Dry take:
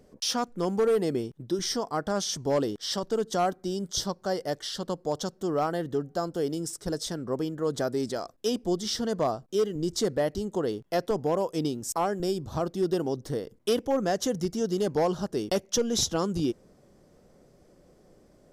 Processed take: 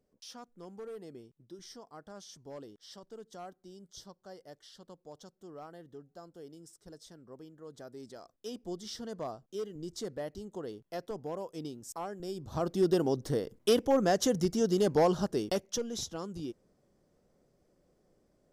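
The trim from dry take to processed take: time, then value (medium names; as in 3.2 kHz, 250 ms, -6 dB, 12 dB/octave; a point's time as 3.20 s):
7.74 s -20 dB
8.70 s -12 dB
12.24 s -12 dB
12.75 s 0 dB
15.24 s 0 dB
16.02 s -12 dB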